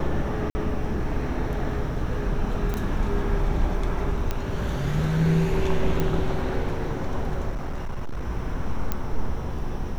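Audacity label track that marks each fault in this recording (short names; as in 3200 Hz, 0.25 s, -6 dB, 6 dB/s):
0.500000	0.550000	gap 50 ms
2.740000	2.740000	pop -14 dBFS
4.310000	4.310000	pop -13 dBFS
6.000000	6.000000	pop -12 dBFS
7.490000	8.240000	clipped -25 dBFS
8.920000	8.920000	pop -11 dBFS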